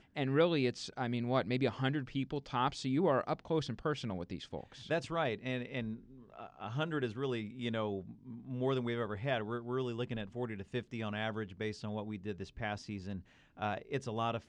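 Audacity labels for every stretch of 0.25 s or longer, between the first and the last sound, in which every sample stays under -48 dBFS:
13.210000	13.570000	silence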